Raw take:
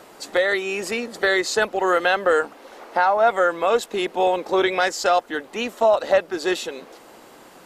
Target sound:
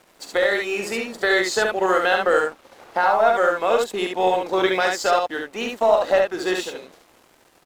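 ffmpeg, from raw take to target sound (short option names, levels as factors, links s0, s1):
-af "aeval=exprs='sgn(val(0))*max(abs(val(0))-0.00562,0)':c=same,aecho=1:1:44|70:0.316|0.668,aeval=exprs='0.631*(cos(1*acos(clip(val(0)/0.631,-1,1)))-cos(1*PI/2))+0.00708*(cos(4*acos(clip(val(0)/0.631,-1,1)))-cos(4*PI/2))+0.00398*(cos(7*acos(clip(val(0)/0.631,-1,1)))-cos(7*PI/2))':c=same,volume=0.891"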